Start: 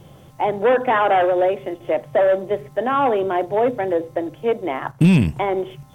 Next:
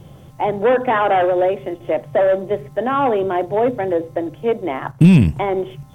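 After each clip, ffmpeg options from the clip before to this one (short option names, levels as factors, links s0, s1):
-af "lowshelf=f=250:g=6"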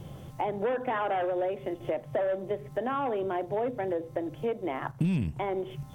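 -af "acompressor=threshold=0.0398:ratio=3,volume=0.75"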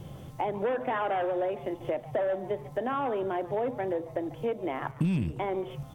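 -filter_complex "[0:a]asplit=4[s0][s1][s2][s3];[s1]adelay=144,afreqshift=150,volume=0.119[s4];[s2]adelay=288,afreqshift=300,volume=0.0427[s5];[s3]adelay=432,afreqshift=450,volume=0.0155[s6];[s0][s4][s5][s6]amix=inputs=4:normalize=0"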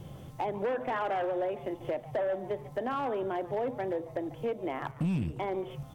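-af "asoftclip=type=hard:threshold=0.0708,volume=0.794"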